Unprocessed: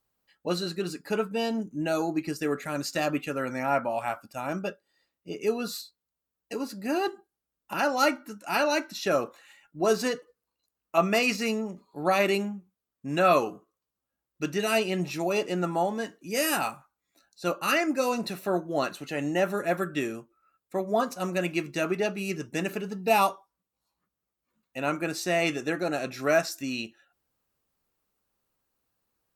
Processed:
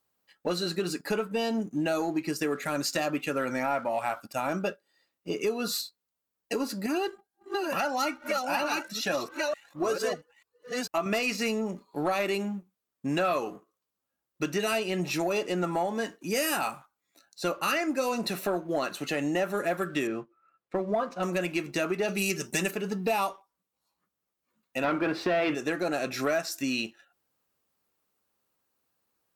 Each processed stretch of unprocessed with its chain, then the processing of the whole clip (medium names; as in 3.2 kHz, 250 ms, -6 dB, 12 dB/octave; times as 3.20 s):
6.86–11.06 s: chunks repeated in reverse 446 ms, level -4 dB + Shepard-style flanger rising 1.7 Hz
20.07–21.23 s: low-pass 2.8 kHz + comb 5.9 ms, depth 31%
22.08–22.71 s: peaking EQ 11 kHz +11.5 dB 2.6 oct + comb 5.2 ms, depth 64%
24.84–25.55 s: high-pass 160 Hz 6 dB/octave + waveshaping leveller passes 3 + distance through air 410 m
whole clip: high-pass 170 Hz 6 dB/octave; compression 4:1, threshold -33 dBFS; waveshaping leveller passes 1; trim +3.5 dB